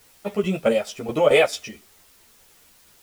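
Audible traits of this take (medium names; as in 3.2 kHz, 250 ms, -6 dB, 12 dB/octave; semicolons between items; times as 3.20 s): tremolo saw down 4.6 Hz, depth 65%; a quantiser's noise floor 10-bit, dither triangular; a shimmering, thickened sound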